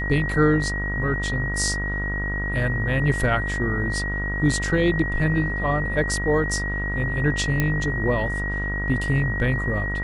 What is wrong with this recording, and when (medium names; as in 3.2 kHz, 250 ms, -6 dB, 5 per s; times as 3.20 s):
buzz 50 Hz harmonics 32 -28 dBFS
whine 1.9 kHz -27 dBFS
7.60 s: pop -8 dBFS